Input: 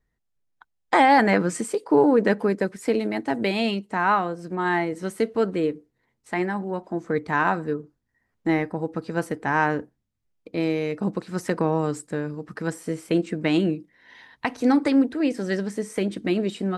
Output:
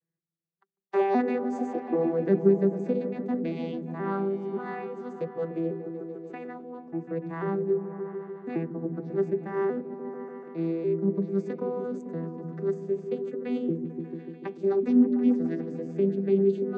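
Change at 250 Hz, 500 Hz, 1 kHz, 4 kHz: -3.5 dB, -2.0 dB, -12.5 dB, under -20 dB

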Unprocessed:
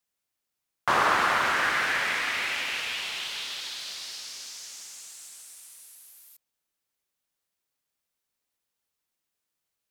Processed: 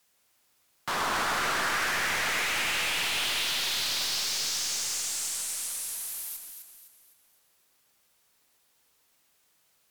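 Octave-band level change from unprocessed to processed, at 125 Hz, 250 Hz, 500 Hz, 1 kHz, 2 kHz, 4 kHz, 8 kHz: +0.5, -1.0, -2.5, -4.5, -2.0, +4.0, +9.0 dB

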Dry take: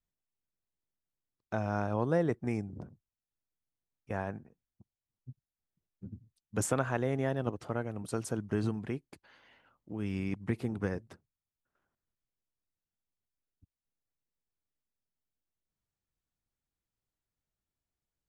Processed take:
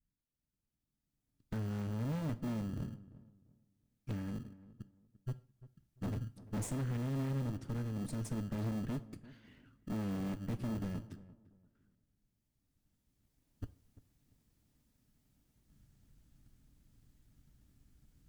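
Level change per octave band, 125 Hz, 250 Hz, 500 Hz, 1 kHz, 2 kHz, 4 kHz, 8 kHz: -1.0, -3.0, -12.5, -11.0, -11.5, -2.5, -8.0 dB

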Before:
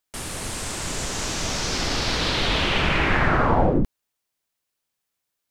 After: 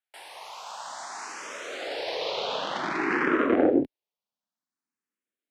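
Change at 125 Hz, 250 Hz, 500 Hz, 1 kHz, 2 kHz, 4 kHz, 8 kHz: -22.0, -1.0, -1.0, -6.0, -6.5, -10.5, -15.0 dB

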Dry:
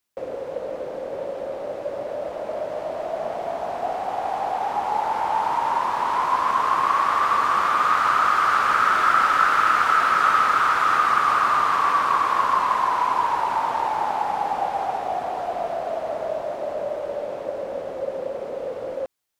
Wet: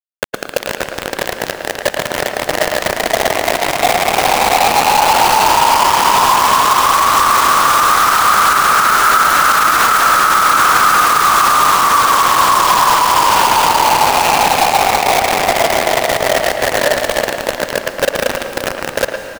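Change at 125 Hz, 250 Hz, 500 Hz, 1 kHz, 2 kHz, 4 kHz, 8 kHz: n/a, +13.5 dB, +10.0 dB, +9.5 dB, +11.5 dB, +19.5 dB, +25.5 dB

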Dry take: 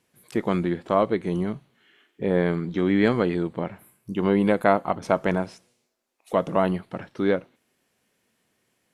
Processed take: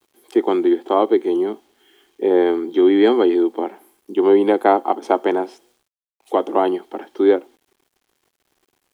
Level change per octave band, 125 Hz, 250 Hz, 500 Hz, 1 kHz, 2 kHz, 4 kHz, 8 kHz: under -15 dB, +6.0 dB, +8.0 dB, +6.5 dB, 0.0 dB, +6.5 dB, n/a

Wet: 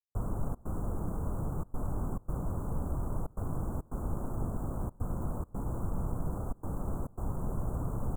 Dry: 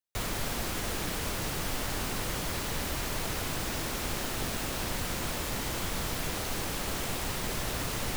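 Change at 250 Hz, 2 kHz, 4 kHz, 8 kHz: -0.5 dB, -25.0 dB, under -40 dB, -22.0 dB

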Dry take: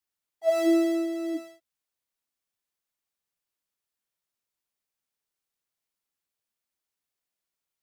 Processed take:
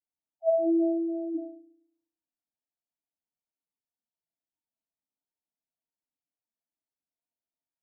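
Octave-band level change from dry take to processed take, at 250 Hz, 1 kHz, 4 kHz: -2.0 dB, n/a, under -35 dB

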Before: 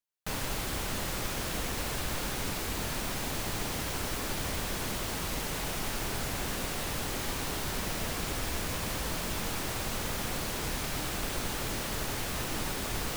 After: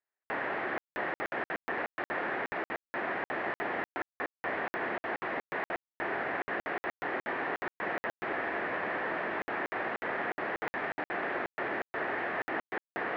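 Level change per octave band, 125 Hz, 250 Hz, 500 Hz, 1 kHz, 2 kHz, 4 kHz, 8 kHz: -16.5 dB, -3.0 dB, +3.0 dB, +3.5 dB, +5.0 dB, -15.0 dB, under -30 dB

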